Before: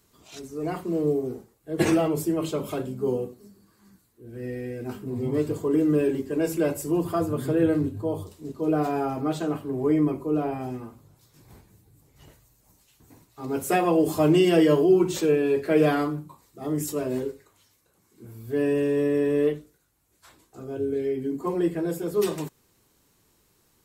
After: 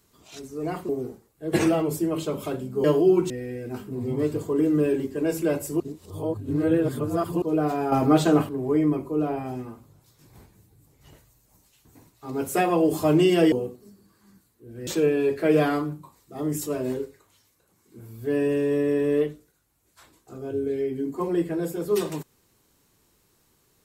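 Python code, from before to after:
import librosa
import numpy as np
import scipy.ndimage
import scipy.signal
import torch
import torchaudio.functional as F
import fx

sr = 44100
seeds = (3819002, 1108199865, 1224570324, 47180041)

y = fx.edit(x, sr, fx.cut(start_s=0.89, length_s=0.26),
    fx.swap(start_s=3.1, length_s=1.35, other_s=14.67, other_length_s=0.46),
    fx.reverse_span(start_s=6.95, length_s=1.62),
    fx.clip_gain(start_s=9.07, length_s=0.57, db=8.5), tone=tone)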